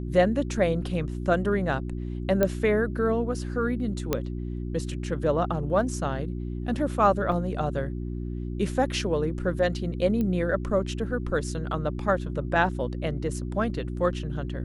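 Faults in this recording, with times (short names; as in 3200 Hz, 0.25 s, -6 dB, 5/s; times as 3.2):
hum 60 Hz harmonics 6 -32 dBFS
2.43 pop -10 dBFS
4.13 pop -10 dBFS
7.32 gap 4.3 ms
10.21 pop -18 dBFS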